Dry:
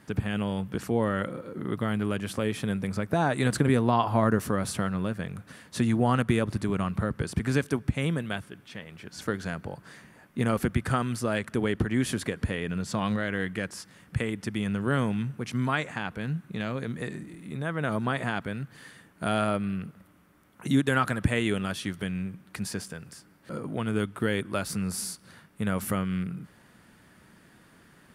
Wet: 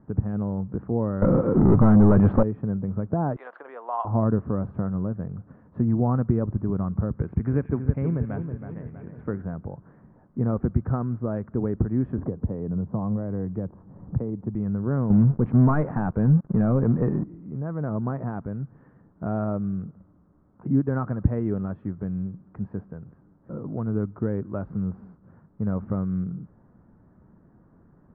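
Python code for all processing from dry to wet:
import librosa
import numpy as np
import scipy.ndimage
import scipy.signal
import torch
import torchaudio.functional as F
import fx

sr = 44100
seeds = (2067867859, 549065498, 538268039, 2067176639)

y = fx.chain(x, sr, fx.high_shelf(hz=2400.0, db=10.5),
    fx.leveller(passes=5), at=(1.22, 2.43))
y = fx.chain(y, sr, fx.highpass(hz=660.0, slope=24),
    fx.peak_eq(hz=3200.0, db=14.5, octaves=1.1), at=(3.36, 4.05))
y = fx.chain(y, sr, fx.peak_eq(hz=2300.0, db=9.5, octaves=0.82),
    fx.echo_split(split_hz=2100.0, low_ms=322, high_ms=87, feedback_pct=52, wet_db=-8), at=(7.16, 9.42))
y = fx.chain(y, sr, fx.band_shelf(hz=3000.0, db=-10.0, octaves=2.6),
    fx.band_squash(depth_pct=70), at=(12.18, 14.55))
y = fx.chain(y, sr, fx.highpass(hz=53.0, slope=6),
    fx.leveller(passes=3), at=(15.1, 17.24))
y = scipy.signal.sosfilt(scipy.signal.butter(4, 1200.0, 'lowpass', fs=sr, output='sos'), y)
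y = fx.tilt_eq(y, sr, slope=-2.5)
y = F.gain(torch.from_numpy(y), -3.5).numpy()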